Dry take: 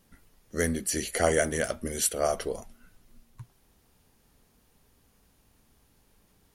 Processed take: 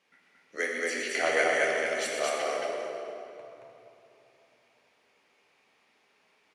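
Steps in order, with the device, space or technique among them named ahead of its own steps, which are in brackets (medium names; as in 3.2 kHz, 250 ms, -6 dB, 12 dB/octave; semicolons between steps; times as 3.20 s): 0.56–0.98 s: steep high-pass 230 Hz 96 dB/octave; station announcement (band-pass 480–4800 Hz; peaking EQ 2.3 kHz +10 dB 0.53 oct; loudspeakers at several distances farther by 42 m -10 dB, 77 m -2 dB; reverberation RT60 2.9 s, pre-delay 6 ms, DRR -0.5 dB); trim -3.5 dB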